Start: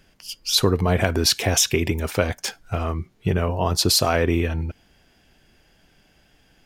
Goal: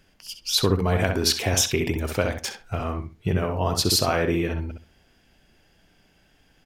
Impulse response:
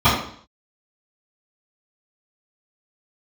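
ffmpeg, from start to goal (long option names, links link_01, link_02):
-filter_complex "[0:a]asplit=2[link_01][link_02];[link_02]adelay=65,lowpass=frequency=2700:poles=1,volume=-5dB,asplit=2[link_03][link_04];[link_04]adelay=65,lowpass=frequency=2700:poles=1,volume=0.22,asplit=2[link_05][link_06];[link_06]adelay=65,lowpass=frequency=2700:poles=1,volume=0.22[link_07];[link_01][link_03][link_05][link_07]amix=inputs=4:normalize=0,volume=-3dB"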